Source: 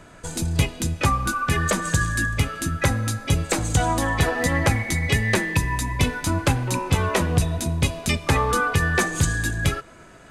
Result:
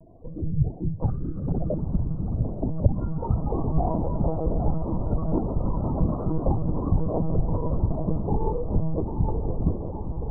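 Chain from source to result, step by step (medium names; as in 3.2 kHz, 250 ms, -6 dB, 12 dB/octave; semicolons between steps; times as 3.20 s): spectral gate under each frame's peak -10 dB strong; steep low-pass 930 Hz 96 dB/octave; ever faster or slower copies 95 ms, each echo +2 st, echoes 3, each echo -6 dB; echo that smears into a reverb 910 ms, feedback 69%, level -7 dB; monotone LPC vocoder at 8 kHz 160 Hz; trim -2 dB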